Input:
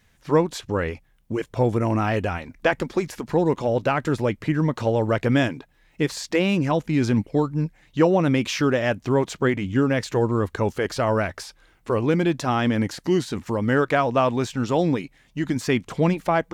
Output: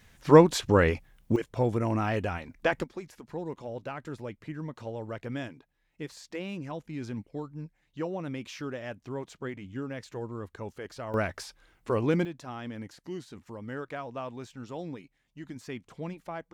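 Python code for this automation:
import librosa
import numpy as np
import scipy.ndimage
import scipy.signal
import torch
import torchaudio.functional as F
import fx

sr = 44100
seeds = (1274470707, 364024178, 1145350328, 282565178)

y = fx.gain(x, sr, db=fx.steps((0.0, 3.0), (1.36, -6.0), (2.84, -16.0), (11.14, -5.0), (12.25, -17.5)))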